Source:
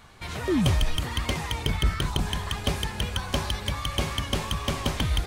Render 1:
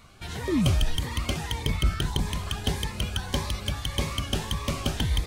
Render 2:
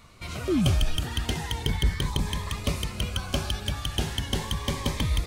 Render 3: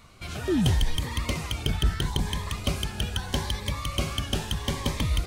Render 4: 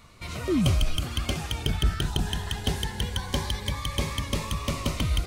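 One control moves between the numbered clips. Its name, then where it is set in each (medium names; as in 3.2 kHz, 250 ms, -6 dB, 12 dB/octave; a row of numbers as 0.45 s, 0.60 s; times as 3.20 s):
Shepard-style phaser, rate: 1.7 Hz, 0.37 Hz, 0.78 Hz, 0.21 Hz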